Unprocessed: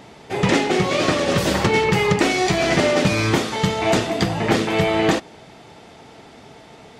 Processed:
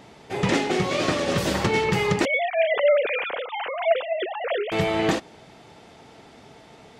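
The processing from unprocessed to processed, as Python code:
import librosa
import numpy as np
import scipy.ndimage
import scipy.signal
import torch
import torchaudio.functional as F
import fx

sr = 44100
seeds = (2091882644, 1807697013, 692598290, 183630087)

y = fx.sine_speech(x, sr, at=(2.25, 4.72))
y = y * librosa.db_to_amplitude(-4.5)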